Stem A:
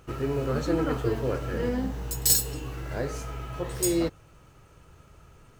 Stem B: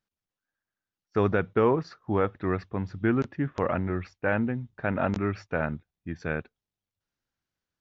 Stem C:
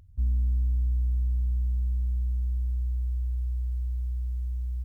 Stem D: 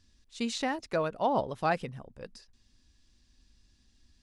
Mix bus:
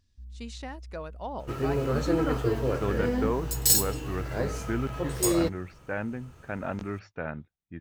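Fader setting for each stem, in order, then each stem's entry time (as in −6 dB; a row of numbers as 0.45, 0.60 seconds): +0.5, −6.5, −19.0, −9.0 decibels; 1.40, 1.65, 0.00, 0.00 seconds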